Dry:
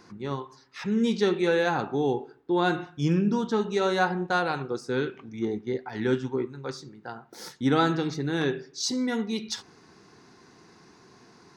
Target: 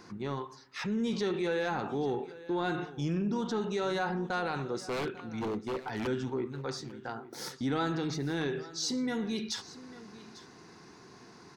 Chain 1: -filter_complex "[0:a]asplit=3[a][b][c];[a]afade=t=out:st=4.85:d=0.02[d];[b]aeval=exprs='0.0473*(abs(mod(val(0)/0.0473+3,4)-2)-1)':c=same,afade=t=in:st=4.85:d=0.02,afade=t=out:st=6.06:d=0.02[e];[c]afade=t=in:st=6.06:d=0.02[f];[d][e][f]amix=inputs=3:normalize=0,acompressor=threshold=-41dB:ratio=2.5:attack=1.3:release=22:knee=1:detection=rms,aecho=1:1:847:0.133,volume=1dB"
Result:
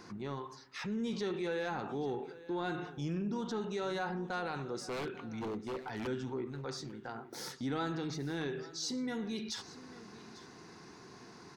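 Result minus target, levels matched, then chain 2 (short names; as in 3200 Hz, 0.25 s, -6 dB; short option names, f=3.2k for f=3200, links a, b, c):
compressor: peak gain reduction +5 dB
-filter_complex "[0:a]asplit=3[a][b][c];[a]afade=t=out:st=4.85:d=0.02[d];[b]aeval=exprs='0.0473*(abs(mod(val(0)/0.0473+3,4)-2)-1)':c=same,afade=t=in:st=4.85:d=0.02,afade=t=out:st=6.06:d=0.02[e];[c]afade=t=in:st=6.06:d=0.02[f];[d][e][f]amix=inputs=3:normalize=0,acompressor=threshold=-33dB:ratio=2.5:attack=1.3:release=22:knee=1:detection=rms,aecho=1:1:847:0.133,volume=1dB"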